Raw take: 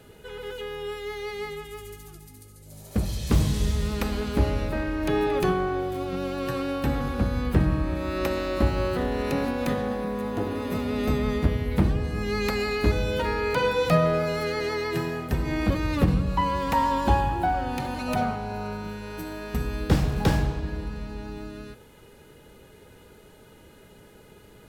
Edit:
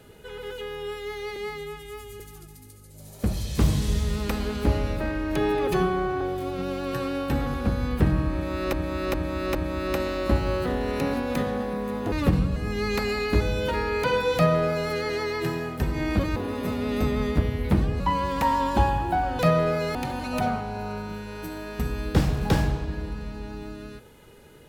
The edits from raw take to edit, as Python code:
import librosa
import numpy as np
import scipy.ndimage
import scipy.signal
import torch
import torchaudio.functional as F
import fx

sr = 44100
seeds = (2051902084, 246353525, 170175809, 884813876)

y = fx.edit(x, sr, fx.stretch_span(start_s=1.36, length_s=0.56, factor=1.5),
    fx.stretch_span(start_s=5.39, length_s=0.36, factor=1.5),
    fx.repeat(start_s=7.86, length_s=0.41, count=4),
    fx.swap(start_s=10.43, length_s=1.64, other_s=15.87, other_length_s=0.44),
    fx.duplicate(start_s=13.86, length_s=0.56, to_s=17.7), tone=tone)